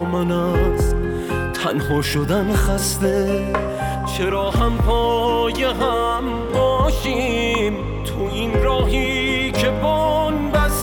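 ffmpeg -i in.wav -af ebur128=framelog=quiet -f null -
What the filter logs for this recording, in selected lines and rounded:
Integrated loudness:
  I:         -19.5 LUFS
  Threshold: -29.5 LUFS
Loudness range:
  LRA:         1.1 LU
  Threshold: -39.5 LUFS
  LRA low:   -20.0 LUFS
  LRA high:  -18.9 LUFS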